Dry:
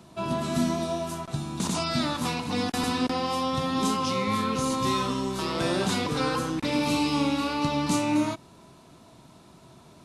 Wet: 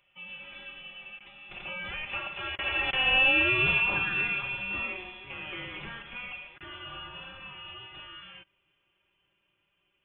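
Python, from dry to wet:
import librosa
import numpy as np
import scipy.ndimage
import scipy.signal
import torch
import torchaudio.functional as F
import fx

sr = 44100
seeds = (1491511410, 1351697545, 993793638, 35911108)

y = fx.doppler_pass(x, sr, speed_mps=19, closest_m=7.4, pass_at_s=3.31)
y = scipy.signal.sosfilt(scipy.signal.butter(2, 970.0, 'highpass', fs=sr, output='sos'), y)
y = y + 0.72 * np.pad(y, (int(4.8 * sr / 1000.0), 0))[:len(y)]
y = fx.freq_invert(y, sr, carrier_hz=3700)
y = y * 10.0 ** (7.5 / 20.0)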